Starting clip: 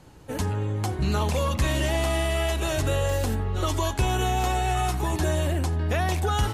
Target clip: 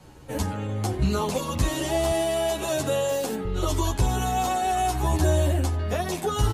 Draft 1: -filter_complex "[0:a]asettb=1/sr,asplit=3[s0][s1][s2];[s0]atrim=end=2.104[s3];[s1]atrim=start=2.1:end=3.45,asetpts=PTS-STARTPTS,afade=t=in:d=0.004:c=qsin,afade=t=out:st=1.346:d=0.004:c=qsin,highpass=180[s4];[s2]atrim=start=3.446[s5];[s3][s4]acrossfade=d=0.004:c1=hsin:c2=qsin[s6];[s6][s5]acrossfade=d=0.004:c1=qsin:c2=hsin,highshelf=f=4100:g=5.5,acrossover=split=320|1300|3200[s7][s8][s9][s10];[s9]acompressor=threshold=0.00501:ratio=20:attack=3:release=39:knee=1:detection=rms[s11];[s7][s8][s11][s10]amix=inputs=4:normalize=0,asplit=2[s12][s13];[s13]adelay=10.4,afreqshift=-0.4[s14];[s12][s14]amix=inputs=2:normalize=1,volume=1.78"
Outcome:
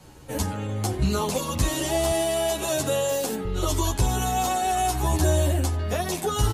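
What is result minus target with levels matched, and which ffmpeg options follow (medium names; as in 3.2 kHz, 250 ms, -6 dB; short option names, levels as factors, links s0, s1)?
8 kHz band +3.5 dB
-filter_complex "[0:a]asettb=1/sr,asplit=3[s0][s1][s2];[s0]atrim=end=2.104[s3];[s1]atrim=start=2.1:end=3.45,asetpts=PTS-STARTPTS,afade=t=in:d=0.004:c=qsin,afade=t=out:st=1.346:d=0.004:c=qsin,highpass=180[s4];[s2]atrim=start=3.446[s5];[s3][s4]acrossfade=d=0.004:c1=hsin:c2=qsin[s6];[s6][s5]acrossfade=d=0.004:c1=qsin:c2=hsin,acrossover=split=320|1300|3200[s7][s8][s9][s10];[s9]acompressor=threshold=0.00501:ratio=20:attack=3:release=39:knee=1:detection=rms[s11];[s7][s8][s11][s10]amix=inputs=4:normalize=0,asplit=2[s12][s13];[s13]adelay=10.4,afreqshift=-0.4[s14];[s12][s14]amix=inputs=2:normalize=1,volume=1.78"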